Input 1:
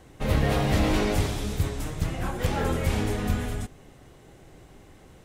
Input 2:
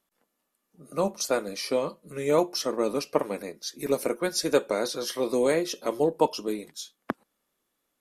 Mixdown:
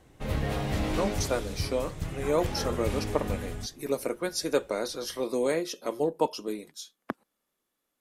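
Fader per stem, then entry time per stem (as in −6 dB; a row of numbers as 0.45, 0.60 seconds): −6.5, −3.5 decibels; 0.00, 0.00 seconds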